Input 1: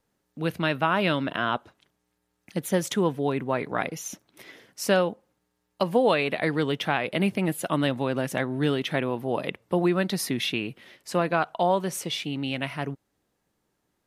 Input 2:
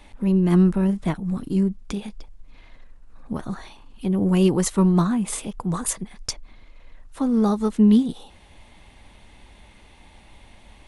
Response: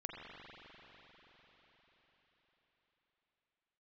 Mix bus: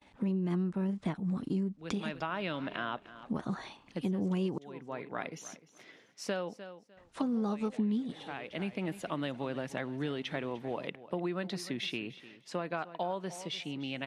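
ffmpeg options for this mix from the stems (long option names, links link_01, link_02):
-filter_complex "[0:a]adelay=1400,volume=-8dB,asplit=2[link_01][link_02];[link_02]volume=-17.5dB[link_03];[1:a]agate=range=-33dB:threshold=-41dB:ratio=3:detection=peak,volume=-2dB,asplit=3[link_04][link_05][link_06];[link_04]atrim=end=4.58,asetpts=PTS-STARTPTS,afade=type=out:start_time=4.576:duration=0.004:curve=hsin[link_07];[link_05]atrim=start=4.58:end=6.97,asetpts=PTS-STARTPTS,volume=0[link_08];[link_06]atrim=start=6.97,asetpts=PTS-STARTPTS,afade=type=in:duration=0.004:curve=hsin[link_09];[link_07][link_08][link_09]concat=n=3:v=0:a=1,asplit=2[link_10][link_11];[link_11]apad=whole_len=682176[link_12];[link_01][link_12]sidechaincompress=threshold=-30dB:ratio=8:attack=16:release=718[link_13];[link_03]aecho=0:1:301|602|903:1|0.2|0.04[link_14];[link_13][link_10][link_14]amix=inputs=3:normalize=0,highpass=120,lowpass=6400,acompressor=threshold=-30dB:ratio=6"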